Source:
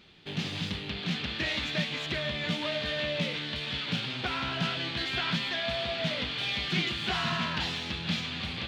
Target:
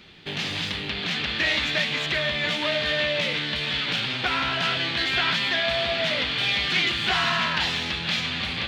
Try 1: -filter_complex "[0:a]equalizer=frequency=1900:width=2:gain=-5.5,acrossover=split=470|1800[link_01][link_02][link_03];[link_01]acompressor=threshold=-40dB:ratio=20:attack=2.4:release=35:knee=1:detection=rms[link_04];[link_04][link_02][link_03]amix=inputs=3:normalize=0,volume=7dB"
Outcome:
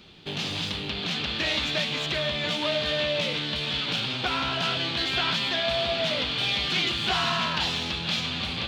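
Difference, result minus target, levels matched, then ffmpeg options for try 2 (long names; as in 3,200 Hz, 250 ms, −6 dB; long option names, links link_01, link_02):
2,000 Hz band −3.0 dB
-filter_complex "[0:a]equalizer=frequency=1900:width=2:gain=3,acrossover=split=470|1800[link_01][link_02][link_03];[link_01]acompressor=threshold=-40dB:ratio=20:attack=2.4:release=35:knee=1:detection=rms[link_04];[link_04][link_02][link_03]amix=inputs=3:normalize=0,volume=7dB"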